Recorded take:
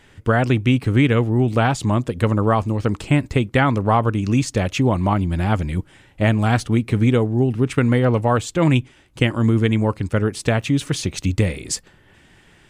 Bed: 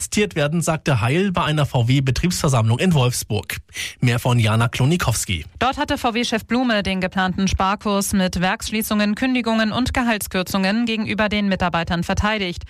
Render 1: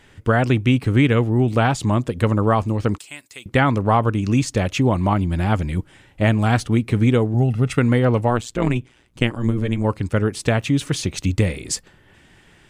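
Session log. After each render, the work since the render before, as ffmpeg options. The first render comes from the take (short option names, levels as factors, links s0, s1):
-filter_complex "[0:a]asettb=1/sr,asplit=3[s0][s1][s2];[s0]atrim=end=2.984[s3];[s1]atrim=start=2.98:end=3.46,asetpts=PTS-STARTPTS,afade=t=in:d=0.004:c=qsin,afade=t=out:st=0.476:d=0.004:c=qsin,aderivative[s4];[s2]atrim=start=3.456[s5];[s3][s4]acrossfade=d=0.004:c1=hsin:c2=qsin[s6];[s6][s5]acrossfade=d=0.004:c1=qsin:c2=hsin,asettb=1/sr,asplit=3[s7][s8][s9];[s7]atrim=end=7.344[s10];[s8]atrim=start=7.34:end=7.78,asetpts=PTS-STARTPTS,afade=t=in:d=0.004:c=qsin,afade=t=out:st=0.436:d=0.004:c=qsin,aecho=1:1:1.5:0.65,atrim=end_sample=19404[s11];[s9]atrim=start=7.776[s12];[s10][s11]acrossfade=d=0.004:c1=hsin:c2=qsin[s13];[s13][s12]acrossfade=d=0.004:c1=qsin:c2=hsin,asplit=3[s14][s15][s16];[s14]afade=t=out:st=8.29:d=0.02[s17];[s15]tremolo=f=120:d=0.824,afade=t=in:st=8.29:d=0.02,afade=t=out:st=9.83:d=0.02[s18];[s16]afade=t=in:st=9.83:d=0.02[s19];[s17][s18][s19]amix=inputs=3:normalize=0"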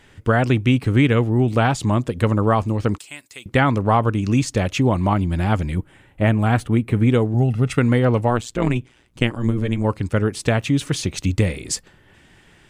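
-filter_complex "[0:a]asettb=1/sr,asplit=3[s0][s1][s2];[s0]atrim=end=5.754[s3];[s1]atrim=start=5.75:end=7.1,asetpts=PTS-STARTPTS,afade=t=in:d=0.004:c=qsin,afade=t=out:st=1.346:d=0.004:c=qsin,equalizer=f=5300:t=o:w=1.1:g=-11[s4];[s2]atrim=start=7.096[s5];[s3][s4]acrossfade=d=0.004:c1=hsin:c2=qsin[s6];[s6][s5]acrossfade=d=0.004:c1=qsin:c2=hsin"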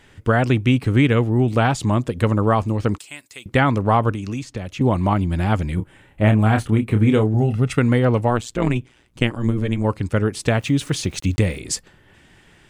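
-filter_complex "[0:a]asettb=1/sr,asplit=3[s0][s1][s2];[s0]atrim=end=4.114[s3];[s1]atrim=start=4.11:end=4.81,asetpts=PTS-STARTPTS,afade=t=in:d=0.004:c=qsin,afade=t=out:st=0.696:d=0.004:c=qsin,acrossover=split=330|4000[s4][s5][s6];[s4]acompressor=threshold=0.0398:ratio=4[s7];[s5]acompressor=threshold=0.0178:ratio=4[s8];[s6]acompressor=threshold=0.00501:ratio=4[s9];[s7][s8][s9]amix=inputs=3:normalize=0[s10];[s2]atrim=start=4.806[s11];[s3][s10]acrossfade=d=0.004:c1=hsin:c2=qsin[s12];[s12][s11]acrossfade=d=0.004:c1=qsin:c2=hsin,asettb=1/sr,asplit=3[s13][s14][s15];[s13]atrim=end=5.754[s16];[s14]atrim=start=5.75:end=7.57,asetpts=PTS-STARTPTS,afade=t=in:d=0.004:c=qsin,afade=t=out:st=1.816:d=0.004:c=qsin,asplit=2[s17][s18];[s18]adelay=28,volume=0.447[s19];[s17][s19]amix=inputs=2:normalize=0,atrim=end_sample=80262[s20];[s15]atrim=start=7.566[s21];[s16][s20]acrossfade=d=0.004:c1=hsin:c2=qsin[s22];[s22][s21]acrossfade=d=0.004:c1=qsin:c2=hsin,asettb=1/sr,asplit=3[s23][s24][s25];[s23]atrim=end=10.544[s26];[s24]atrim=start=10.54:end=11.59,asetpts=PTS-STARTPTS,afade=t=in:d=0.004:c=qsin,afade=t=out:st=1.046:d=0.004:c=qsin,aeval=exprs='val(0)*gte(abs(val(0)),0.00631)':c=same[s27];[s25]atrim=start=11.586[s28];[s26][s27]acrossfade=d=0.004:c1=hsin:c2=qsin[s29];[s29][s28]acrossfade=d=0.004:c1=qsin:c2=hsin"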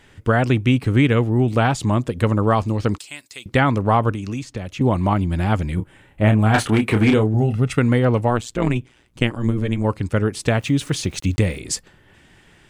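-filter_complex "[0:a]asettb=1/sr,asplit=3[s0][s1][s2];[s0]atrim=end=2.484[s3];[s1]atrim=start=2.48:end=3.56,asetpts=PTS-STARTPTS,afade=t=in:d=0.004:c=qsin,afade=t=out:st=1.076:d=0.004:c=qsin,equalizer=f=4600:t=o:w=0.97:g=5.5[s4];[s2]atrim=start=3.556[s5];[s3][s4]acrossfade=d=0.004:c1=hsin:c2=qsin[s6];[s6][s5]acrossfade=d=0.004:c1=qsin:c2=hsin,asettb=1/sr,asplit=3[s7][s8][s9];[s7]atrim=end=6.544[s10];[s8]atrim=start=6.54:end=7.14,asetpts=PTS-STARTPTS,afade=t=in:d=0.004:c=qsin,afade=t=out:st=0.596:d=0.004:c=qsin,asplit=2[s11][s12];[s12]highpass=f=720:p=1,volume=7.94,asoftclip=type=tanh:threshold=0.501[s13];[s11][s13]amix=inputs=2:normalize=0,lowpass=f=7500:p=1,volume=0.501[s14];[s9]atrim=start=7.136[s15];[s10][s14]acrossfade=d=0.004:c1=hsin:c2=qsin[s16];[s16][s15]acrossfade=d=0.004:c1=qsin:c2=hsin"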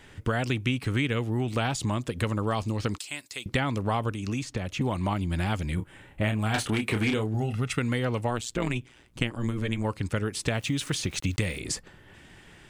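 -filter_complex "[0:a]acrossover=split=1000|2400[s0][s1][s2];[s0]acompressor=threshold=0.0447:ratio=4[s3];[s1]acompressor=threshold=0.0126:ratio=4[s4];[s2]acompressor=threshold=0.0282:ratio=4[s5];[s3][s4][s5]amix=inputs=3:normalize=0"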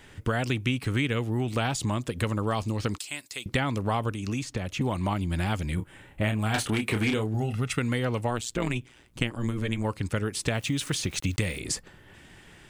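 -af "highshelf=f=9700:g=4.5"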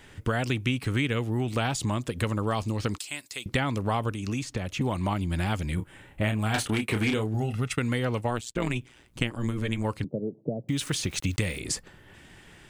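-filter_complex "[0:a]asplit=3[s0][s1][s2];[s0]afade=t=out:st=6.66:d=0.02[s3];[s1]agate=range=0.0224:threshold=0.0282:ratio=3:release=100:detection=peak,afade=t=in:st=6.66:d=0.02,afade=t=out:st=8.55:d=0.02[s4];[s2]afade=t=in:st=8.55:d=0.02[s5];[s3][s4][s5]amix=inputs=3:normalize=0,asettb=1/sr,asplit=3[s6][s7][s8];[s6]atrim=end=10.044[s9];[s7]atrim=start=10.04:end=10.69,asetpts=PTS-STARTPTS,afade=t=in:d=0.004:c=qsin,afade=t=out:st=0.646:d=0.004:c=qsin,asuperpass=centerf=290:order=12:qfactor=0.54[s10];[s8]atrim=start=10.686[s11];[s9][s10]acrossfade=d=0.004:c1=hsin:c2=qsin[s12];[s12][s11]acrossfade=d=0.004:c1=qsin:c2=hsin"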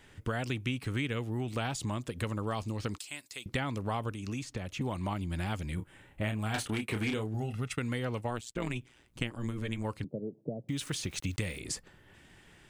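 -af "volume=0.473"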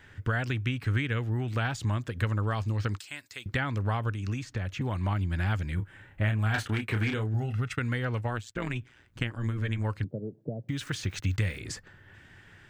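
-af "equalizer=f=100:t=o:w=0.67:g=10,equalizer=f=1600:t=o:w=0.67:g=9,equalizer=f=10000:t=o:w=0.67:g=-9"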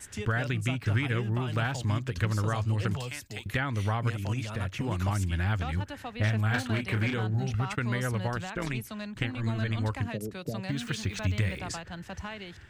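-filter_complex "[1:a]volume=0.1[s0];[0:a][s0]amix=inputs=2:normalize=0"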